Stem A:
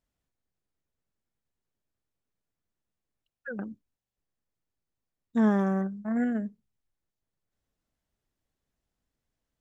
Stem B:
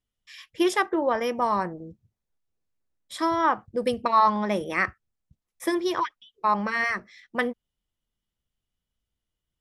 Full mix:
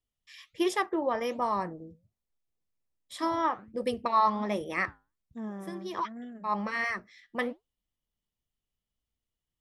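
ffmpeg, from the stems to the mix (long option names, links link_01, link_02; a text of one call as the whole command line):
ffmpeg -i stem1.wav -i stem2.wav -filter_complex "[0:a]volume=-11dB,asplit=2[link_01][link_02];[1:a]volume=-0.5dB[link_03];[link_02]apad=whole_len=423448[link_04];[link_03][link_04]sidechaincompress=threshold=-48dB:ratio=8:attack=32:release=151[link_05];[link_01][link_05]amix=inputs=2:normalize=0,bandreject=frequency=1500:width=8,flanger=delay=2.6:depth=6.9:regen=-82:speed=1.3:shape=sinusoidal" out.wav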